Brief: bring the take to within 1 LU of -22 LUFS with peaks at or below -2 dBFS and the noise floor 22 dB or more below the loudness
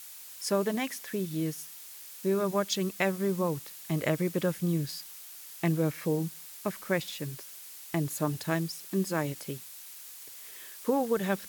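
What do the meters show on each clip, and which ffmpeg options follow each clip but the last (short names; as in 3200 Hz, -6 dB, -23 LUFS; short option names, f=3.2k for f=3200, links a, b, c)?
noise floor -47 dBFS; noise floor target -54 dBFS; loudness -31.5 LUFS; peak -13.5 dBFS; loudness target -22.0 LUFS
-> -af "afftdn=nr=7:nf=-47"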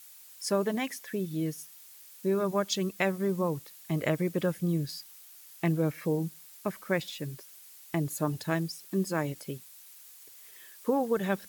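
noise floor -52 dBFS; noise floor target -54 dBFS
-> -af "afftdn=nr=6:nf=-52"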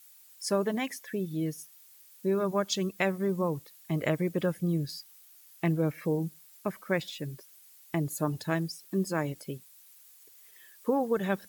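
noise floor -56 dBFS; loudness -31.5 LUFS; peak -14.0 dBFS; loudness target -22.0 LUFS
-> -af "volume=9.5dB"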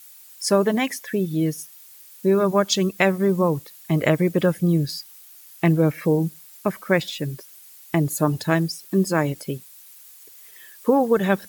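loudness -22.0 LUFS; peak -4.5 dBFS; noise floor -47 dBFS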